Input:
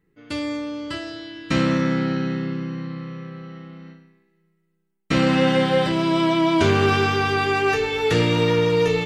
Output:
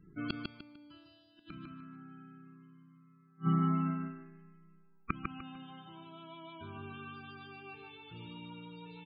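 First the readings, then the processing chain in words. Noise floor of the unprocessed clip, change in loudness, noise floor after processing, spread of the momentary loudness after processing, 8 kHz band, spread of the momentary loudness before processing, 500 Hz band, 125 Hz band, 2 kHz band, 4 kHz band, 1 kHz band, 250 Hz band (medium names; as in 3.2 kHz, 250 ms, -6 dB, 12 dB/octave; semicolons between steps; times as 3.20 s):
-69 dBFS, -19.0 dB, -64 dBFS, 23 LU, under -40 dB, 16 LU, -32.0 dB, -15.0 dB, -25.0 dB, -24.5 dB, -19.5 dB, -17.5 dB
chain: bass shelf 69 Hz -6 dB; loudest bins only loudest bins 32; inverted gate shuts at -28 dBFS, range -38 dB; static phaser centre 1.9 kHz, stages 6; on a send: feedback delay 150 ms, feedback 28%, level -4 dB; on the sum: trim +13 dB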